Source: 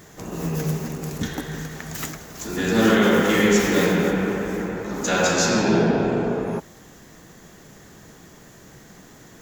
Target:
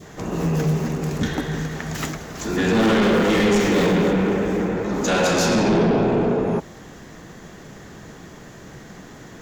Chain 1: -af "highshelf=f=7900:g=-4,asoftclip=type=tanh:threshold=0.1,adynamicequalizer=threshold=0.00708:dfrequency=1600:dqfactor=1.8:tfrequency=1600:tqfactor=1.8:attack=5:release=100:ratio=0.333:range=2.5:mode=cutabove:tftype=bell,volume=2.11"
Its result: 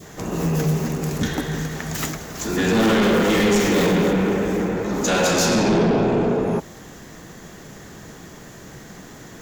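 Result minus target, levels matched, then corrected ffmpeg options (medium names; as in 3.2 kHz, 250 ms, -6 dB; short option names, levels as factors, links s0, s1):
8 kHz band +4.0 dB
-af "highshelf=f=7900:g=-15,asoftclip=type=tanh:threshold=0.1,adynamicequalizer=threshold=0.00708:dfrequency=1600:dqfactor=1.8:tfrequency=1600:tqfactor=1.8:attack=5:release=100:ratio=0.333:range=2.5:mode=cutabove:tftype=bell,volume=2.11"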